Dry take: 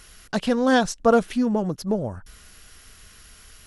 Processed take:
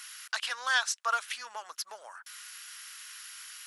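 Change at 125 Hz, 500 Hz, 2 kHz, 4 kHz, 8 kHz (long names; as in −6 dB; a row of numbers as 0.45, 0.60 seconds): below −40 dB, −25.5 dB, −0.5 dB, +0.5 dB, +1.0 dB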